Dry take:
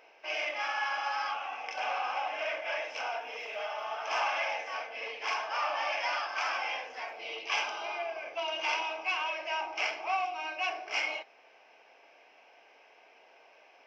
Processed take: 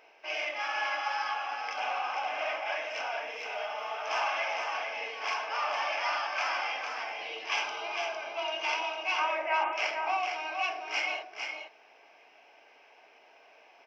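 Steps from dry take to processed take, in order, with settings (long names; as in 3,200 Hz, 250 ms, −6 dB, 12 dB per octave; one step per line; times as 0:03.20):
0:09.18–0:09.73: loudspeaker in its box 200–2,500 Hz, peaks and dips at 260 Hz +10 dB, 370 Hz +4 dB, 560 Hz +7 dB, 850 Hz +7 dB, 1,300 Hz +8 dB, 2,000 Hz +8 dB
notch filter 520 Hz, Q 13
single-tap delay 455 ms −5.5 dB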